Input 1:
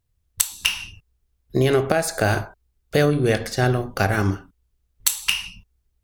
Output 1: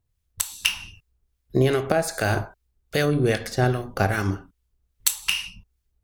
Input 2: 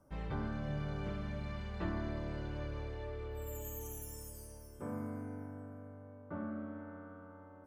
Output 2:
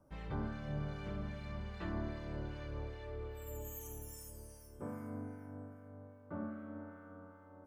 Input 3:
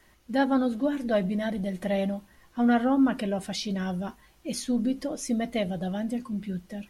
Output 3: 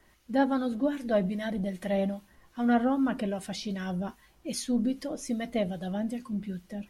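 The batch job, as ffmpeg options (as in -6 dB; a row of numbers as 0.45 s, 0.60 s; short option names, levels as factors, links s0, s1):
-filter_complex "[0:a]acrossover=split=1300[s0][s1];[s0]aeval=exprs='val(0)*(1-0.5/2+0.5/2*cos(2*PI*2.5*n/s))':c=same[s2];[s1]aeval=exprs='val(0)*(1-0.5/2-0.5/2*cos(2*PI*2.5*n/s))':c=same[s3];[s2][s3]amix=inputs=2:normalize=0"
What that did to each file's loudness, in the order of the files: -2.5 LU, -2.0 LU, -2.5 LU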